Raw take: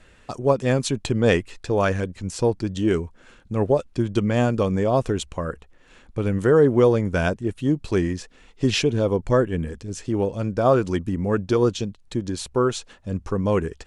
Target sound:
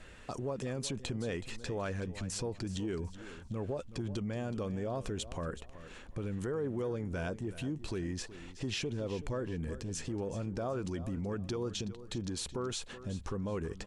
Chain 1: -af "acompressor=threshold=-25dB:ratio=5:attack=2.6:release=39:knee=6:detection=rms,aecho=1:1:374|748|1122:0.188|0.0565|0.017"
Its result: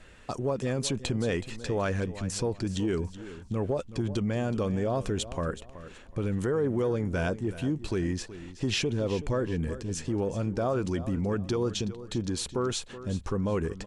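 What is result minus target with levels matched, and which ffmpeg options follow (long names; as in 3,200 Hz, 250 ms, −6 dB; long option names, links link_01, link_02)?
downward compressor: peak gain reduction −8 dB
-af "acompressor=threshold=-35dB:ratio=5:attack=2.6:release=39:knee=6:detection=rms,aecho=1:1:374|748|1122:0.188|0.0565|0.017"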